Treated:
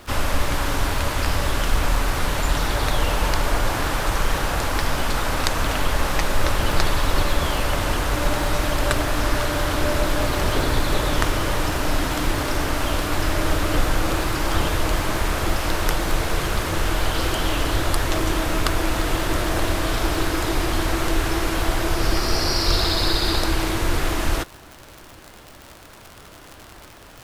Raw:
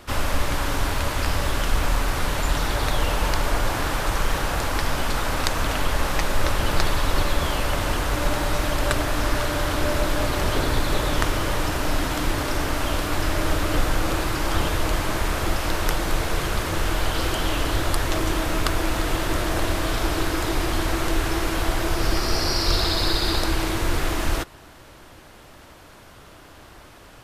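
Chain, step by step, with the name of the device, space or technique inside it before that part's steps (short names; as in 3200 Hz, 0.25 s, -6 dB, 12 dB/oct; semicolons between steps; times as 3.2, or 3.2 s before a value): vinyl LP (crackle 100/s -30 dBFS; white noise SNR 43 dB); gain +1.5 dB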